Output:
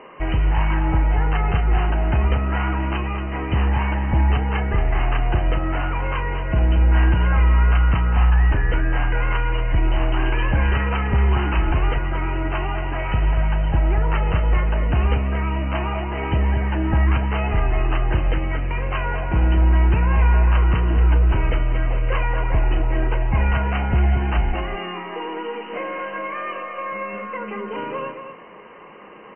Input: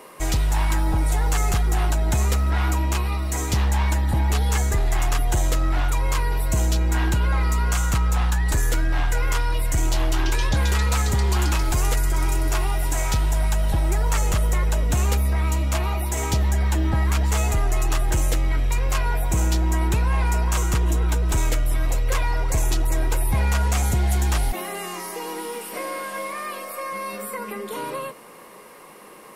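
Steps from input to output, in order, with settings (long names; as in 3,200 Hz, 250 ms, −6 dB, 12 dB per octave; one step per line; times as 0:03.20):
linear-phase brick-wall low-pass 3,100 Hz
double-tracking delay 34 ms −12.5 dB
single-tap delay 230 ms −8.5 dB
level +2 dB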